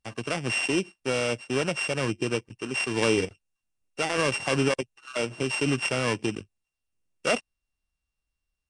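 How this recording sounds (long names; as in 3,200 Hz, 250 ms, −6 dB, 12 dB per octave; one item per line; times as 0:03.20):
a buzz of ramps at a fixed pitch in blocks of 16 samples
Nellymoser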